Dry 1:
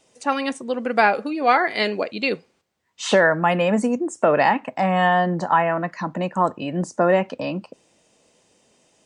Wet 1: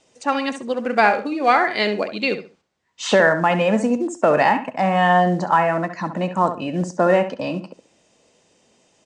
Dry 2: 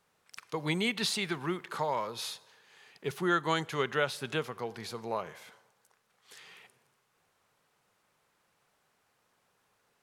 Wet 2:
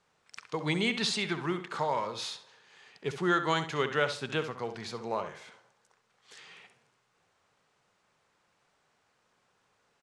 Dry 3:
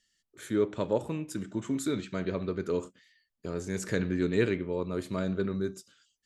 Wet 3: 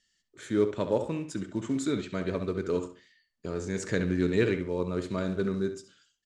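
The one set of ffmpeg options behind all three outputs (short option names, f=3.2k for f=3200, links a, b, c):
-filter_complex "[0:a]acrusher=bits=8:mode=log:mix=0:aa=0.000001,lowpass=f=8.2k:w=0.5412,lowpass=f=8.2k:w=1.3066,asplit=2[a][b];[b]adelay=67,lowpass=f=3.7k:p=1,volume=-9.5dB,asplit=2[c][d];[d]adelay=67,lowpass=f=3.7k:p=1,volume=0.26,asplit=2[e][f];[f]adelay=67,lowpass=f=3.7k:p=1,volume=0.26[g];[a][c][e][g]amix=inputs=4:normalize=0,volume=1dB"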